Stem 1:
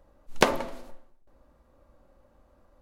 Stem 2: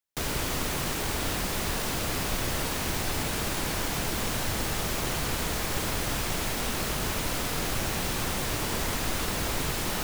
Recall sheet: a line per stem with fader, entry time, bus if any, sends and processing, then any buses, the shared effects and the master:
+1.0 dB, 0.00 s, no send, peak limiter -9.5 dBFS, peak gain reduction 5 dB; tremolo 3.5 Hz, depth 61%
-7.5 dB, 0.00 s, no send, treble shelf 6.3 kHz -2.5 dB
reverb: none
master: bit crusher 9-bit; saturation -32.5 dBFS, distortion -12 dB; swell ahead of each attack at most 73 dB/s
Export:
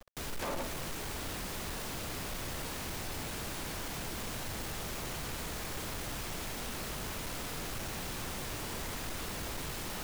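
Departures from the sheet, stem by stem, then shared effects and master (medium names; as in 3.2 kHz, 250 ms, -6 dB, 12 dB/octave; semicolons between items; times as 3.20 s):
stem 2: missing treble shelf 6.3 kHz -2.5 dB; master: missing swell ahead of each attack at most 73 dB/s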